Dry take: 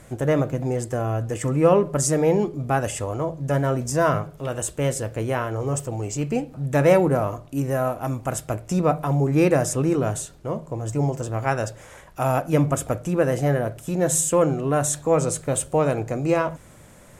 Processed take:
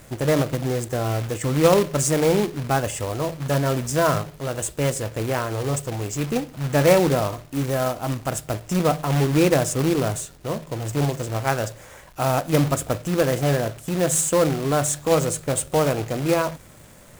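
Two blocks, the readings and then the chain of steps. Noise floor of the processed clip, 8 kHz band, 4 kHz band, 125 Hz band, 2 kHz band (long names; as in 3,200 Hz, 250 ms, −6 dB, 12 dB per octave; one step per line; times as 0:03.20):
−47 dBFS, +1.0 dB, +8.0 dB, 0.0 dB, +2.0 dB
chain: log-companded quantiser 4 bits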